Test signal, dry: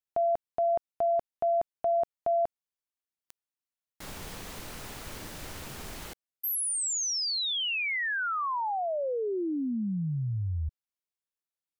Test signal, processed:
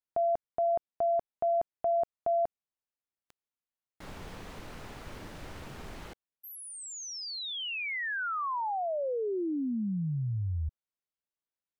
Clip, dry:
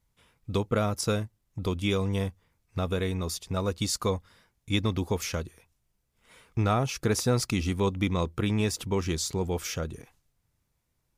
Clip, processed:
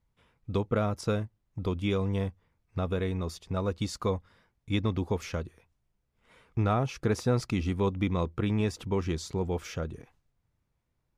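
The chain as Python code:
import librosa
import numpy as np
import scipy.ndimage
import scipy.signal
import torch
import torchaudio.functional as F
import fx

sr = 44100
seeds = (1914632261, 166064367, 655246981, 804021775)

y = fx.lowpass(x, sr, hz=2100.0, slope=6)
y = y * 10.0 ** (-1.0 / 20.0)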